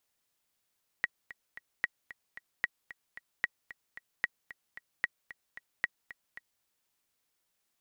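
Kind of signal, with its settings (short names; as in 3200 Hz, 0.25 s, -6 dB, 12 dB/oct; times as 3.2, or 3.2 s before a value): metronome 225 bpm, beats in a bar 3, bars 7, 1910 Hz, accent 17 dB -14.5 dBFS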